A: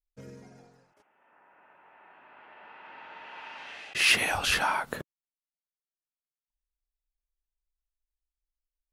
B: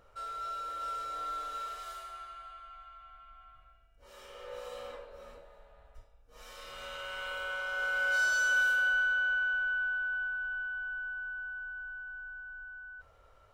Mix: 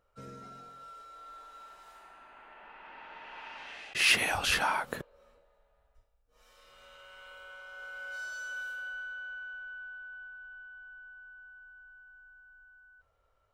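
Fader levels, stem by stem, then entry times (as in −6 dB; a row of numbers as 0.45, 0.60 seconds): −2.0, −12.0 decibels; 0.00, 0.00 seconds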